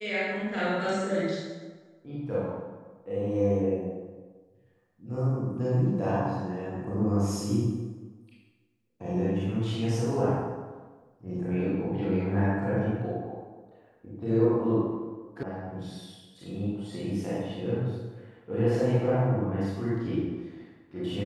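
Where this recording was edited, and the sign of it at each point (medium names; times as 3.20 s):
15.43 s: sound stops dead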